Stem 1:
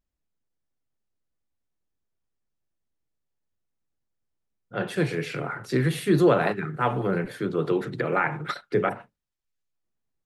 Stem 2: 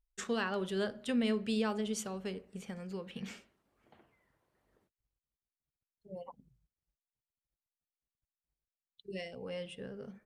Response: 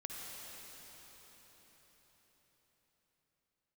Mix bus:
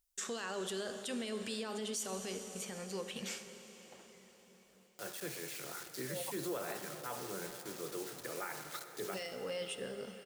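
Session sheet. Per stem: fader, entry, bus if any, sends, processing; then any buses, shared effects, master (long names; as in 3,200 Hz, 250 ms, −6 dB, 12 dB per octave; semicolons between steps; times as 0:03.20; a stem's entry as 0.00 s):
−18.5 dB, 0.25 s, send −4.5 dB, bit reduction 6 bits
+1.0 dB, 0.00 s, send −4.5 dB, brickwall limiter −32.5 dBFS, peak gain reduction 11 dB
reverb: on, RT60 5.2 s, pre-delay 48 ms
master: bass and treble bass −10 dB, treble +11 dB; soft clipping −19.5 dBFS, distortion −30 dB; brickwall limiter −30.5 dBFS, peak gain reduction 8.5 dB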